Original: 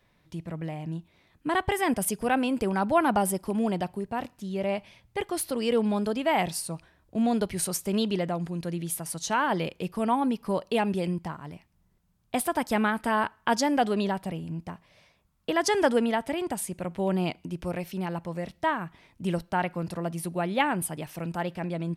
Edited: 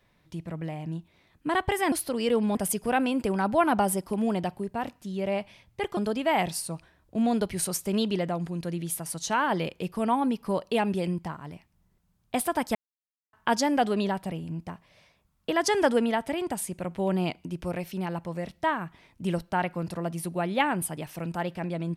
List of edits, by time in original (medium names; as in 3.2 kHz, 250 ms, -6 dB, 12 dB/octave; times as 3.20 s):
5.34–5.97 s: move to 1.92 s
12.75–13.33 s: mute